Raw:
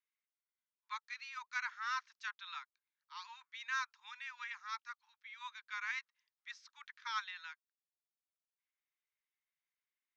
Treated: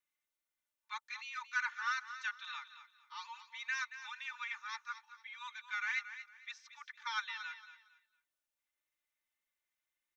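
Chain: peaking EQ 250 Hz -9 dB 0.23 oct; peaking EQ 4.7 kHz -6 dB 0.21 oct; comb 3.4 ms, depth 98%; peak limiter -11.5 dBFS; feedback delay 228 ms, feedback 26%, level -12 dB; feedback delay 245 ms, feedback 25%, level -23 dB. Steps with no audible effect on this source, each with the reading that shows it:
peaking EQ 250 Hz: input has nothing below 760 Hz; peak limiter -11.5 dBFS: peak at its input -23.0 dBFS

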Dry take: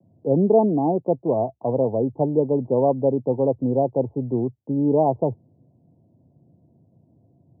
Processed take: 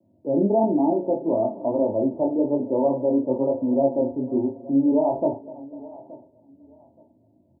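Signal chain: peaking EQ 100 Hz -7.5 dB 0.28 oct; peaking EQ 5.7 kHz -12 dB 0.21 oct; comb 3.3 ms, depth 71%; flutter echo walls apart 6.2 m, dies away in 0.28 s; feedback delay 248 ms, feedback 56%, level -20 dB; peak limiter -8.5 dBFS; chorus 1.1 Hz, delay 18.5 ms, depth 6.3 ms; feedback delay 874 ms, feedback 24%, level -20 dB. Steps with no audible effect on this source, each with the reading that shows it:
peaking EQ 5.7 kHz: input has nothing above 1 kHz

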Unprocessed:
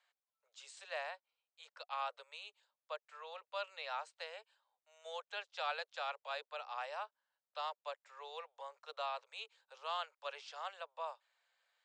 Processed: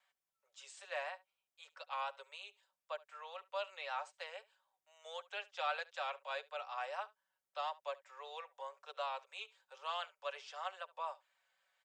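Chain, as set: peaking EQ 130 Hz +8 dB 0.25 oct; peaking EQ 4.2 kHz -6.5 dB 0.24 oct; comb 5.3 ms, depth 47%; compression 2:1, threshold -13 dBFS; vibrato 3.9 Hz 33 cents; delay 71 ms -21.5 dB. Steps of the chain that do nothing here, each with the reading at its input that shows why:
peaking EQ 130 Hz: input has nothing below 380 Hz; compression, threshold -13 dBFS: peak at its input -26.5 dBFS

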